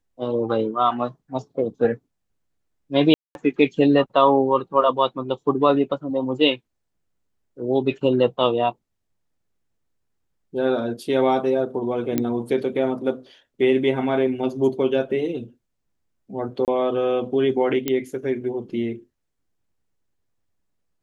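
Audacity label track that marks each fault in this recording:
3.140000	3.350000	dropout 211 ms
12.180000	12.180000	pop -9 dBFS
16.650000	16.680000	dropout 28 ms
17.880000	17.880000	pop -8 dBFS

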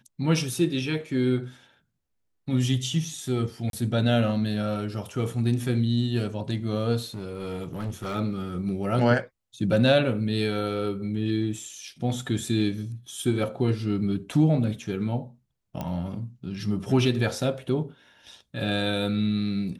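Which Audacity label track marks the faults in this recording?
3.700000	3.730000	dropout 32 ms
7.140000	8.160000	clipped -27 dBFS
15.810000	15.810000	pop -18 dBFS

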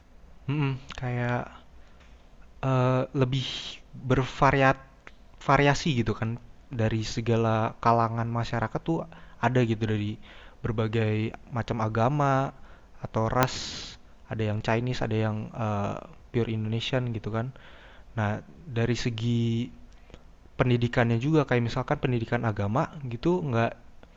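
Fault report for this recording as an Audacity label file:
13.430000	13.430000	pop -4 dBFS

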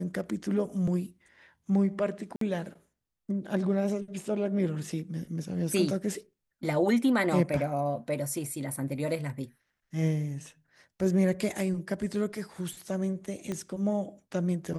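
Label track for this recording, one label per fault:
2.360000	2.410000	dropout 53 ms
13.520000	13.520000	pop -21 dBFS

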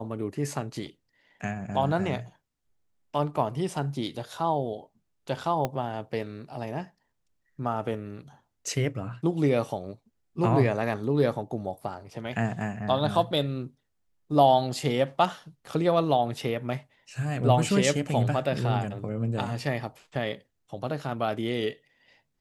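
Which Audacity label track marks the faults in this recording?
5.650000	5.650000	pop -14 dBFS

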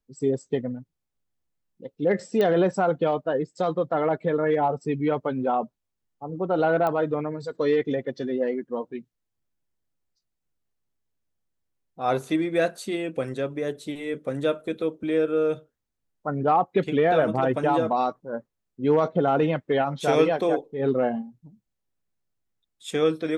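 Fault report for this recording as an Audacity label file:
2.410000	2.410000	pop -14 dBFS
6.870000	6.870000	pop -15 dBFS

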